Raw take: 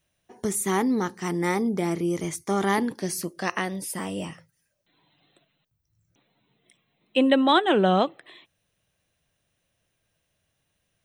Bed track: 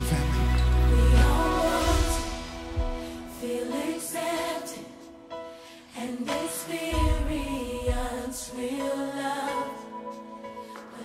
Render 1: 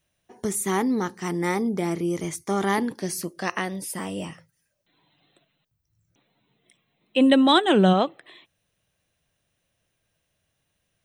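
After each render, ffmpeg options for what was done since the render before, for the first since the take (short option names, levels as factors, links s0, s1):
-filter_complex "[0:a]asplit=3[s0][s1][s2];[s0]afade=t=out:st=7.2:d=0.02[s3];[s1]bass=f=250:g=9,treble=f=4000:g=10,afade=t=in:st=7.2:d=0.02,afade=t=out:st=7.92:d=0.02[s4];[s2]afade=t=in:st=7.92:d=0.02[s5];[s3][s4][s5]amix=inputs=3:normalize=0"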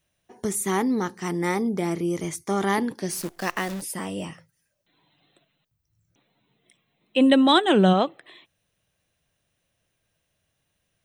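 -filter_complex "[0:a]asettb=1/sr,asplit=3[s0][s1][s2];[s0]atrim=end=3.114[s3];[s1]atrim=start=3.11:end=3.82,asetpts=PTS-STARTPTS,afade=t=in:d=0.004:c=qsin,afade=t=out:st=0.706:d=0.004:c=qsin,acrusher=bits=7:dc=4:mix=0:aa=0.000001[s4];[s2]atrim=start=3.816[s5];[s3][s4]acrossfade=d=0.004:c1=hsin:c2=qsin[s6];[s6][s5]acrossfade=d=0.004:c1=qsin:c2=hsin"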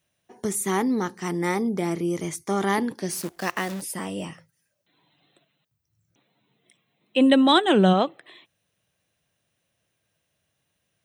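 -af "highpass=85"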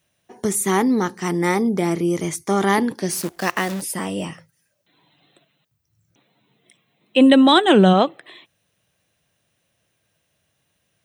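-af "volume=1.88,alimiter=limit=0.708:level=0:latency=1"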